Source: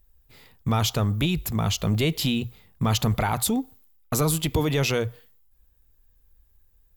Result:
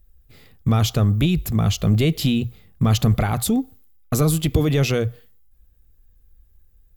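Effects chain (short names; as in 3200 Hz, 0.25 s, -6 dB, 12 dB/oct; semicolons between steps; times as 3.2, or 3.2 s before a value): low shelf 420 Hz +7 dB; notch 930 Hz, Q 5.9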